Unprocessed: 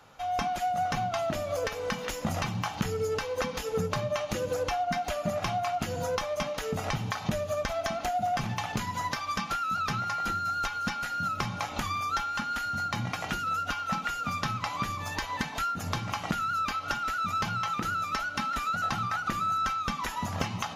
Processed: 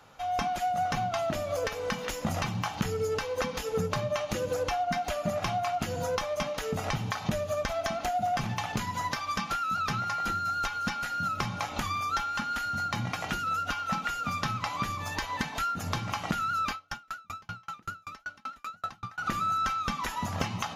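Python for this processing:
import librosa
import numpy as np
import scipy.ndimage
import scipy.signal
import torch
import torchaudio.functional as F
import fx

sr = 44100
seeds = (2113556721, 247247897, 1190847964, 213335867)

y = fx.tremolo_decay(x, sr, direction='decaying', hz=5.2, depth_db=40, at=(16.72, 19.18))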